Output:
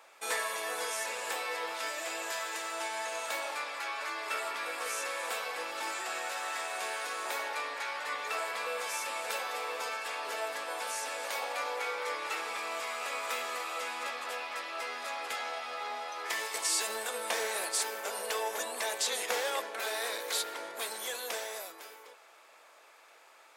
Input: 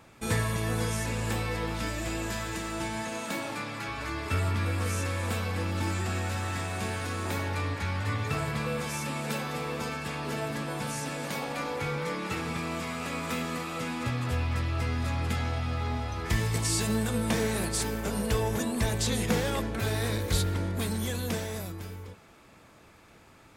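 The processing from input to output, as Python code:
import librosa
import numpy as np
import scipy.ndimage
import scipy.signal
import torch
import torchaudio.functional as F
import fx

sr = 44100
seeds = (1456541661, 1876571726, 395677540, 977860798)

y = scipy.signal.sosfilt(scipy.signal.butter(4, 520.0, 'highpass', fs=sr, output='sos'), x)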